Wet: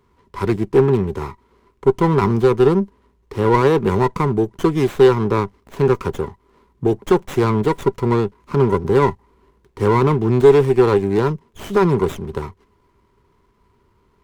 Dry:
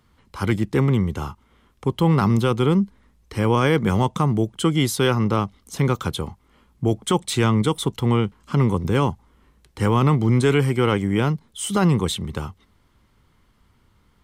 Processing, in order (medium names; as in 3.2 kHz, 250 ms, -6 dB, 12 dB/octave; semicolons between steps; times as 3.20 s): small resonant body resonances 400/980 Hz, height 15 dB, ringing for 50 ms; sliding maximum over 9 samples; trim -1.5 dB